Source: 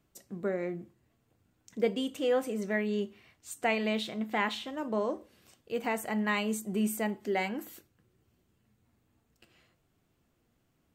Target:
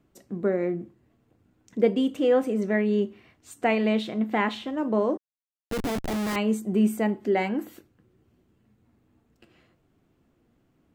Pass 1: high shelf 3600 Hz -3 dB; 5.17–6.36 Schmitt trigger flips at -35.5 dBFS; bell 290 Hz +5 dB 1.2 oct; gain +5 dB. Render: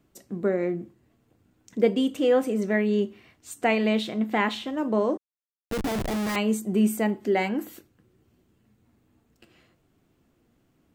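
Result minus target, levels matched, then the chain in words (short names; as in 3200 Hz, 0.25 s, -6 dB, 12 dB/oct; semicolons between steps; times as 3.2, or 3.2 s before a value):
8000 Hz band +4.0 dB
high shelf 3600 Hz -10 dB; 5.17–6.36 Schmitt trigger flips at -35.5 dBFS; bell 290 Hz +5 dB 1.2 oct; gain +5 dB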